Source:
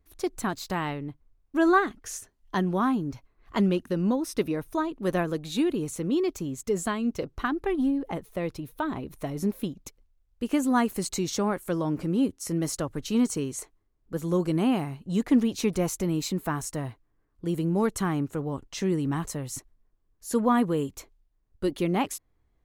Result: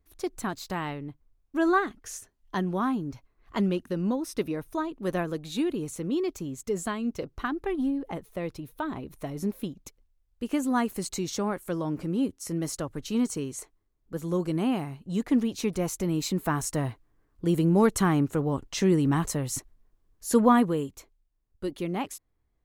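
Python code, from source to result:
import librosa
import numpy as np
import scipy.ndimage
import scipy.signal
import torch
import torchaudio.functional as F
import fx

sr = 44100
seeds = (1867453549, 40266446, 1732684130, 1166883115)

y = fx.gain(x, sr, db=fx.line((15.78, -2.5), (16.82, 4.0), (20.45, 4.0), (20.98, -5.0)))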